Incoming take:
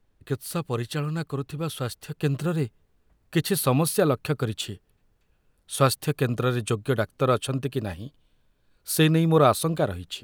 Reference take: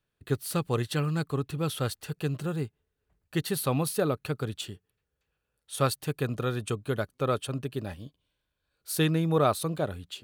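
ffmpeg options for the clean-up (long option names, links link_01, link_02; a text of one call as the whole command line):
ffmpeg -i in.wav -af "agate=range=-21dB:threshold=-58dB,asetnsamples=nb_out_samples=441:pad=0,asendcmd='2.23 volume volume -5.5dB',volume=0dB" out.wav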